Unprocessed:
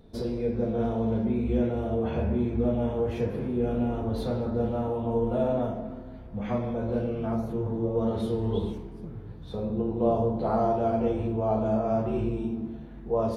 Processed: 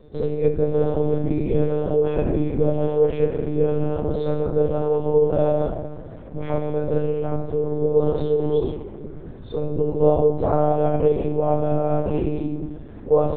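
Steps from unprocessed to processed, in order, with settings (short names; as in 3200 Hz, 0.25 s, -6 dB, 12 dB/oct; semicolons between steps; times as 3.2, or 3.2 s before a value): bell 460 Hz +7 dB 0.57 oct; monotone LPC vocoder at 8 kHz 150 Hz; gain +4 dB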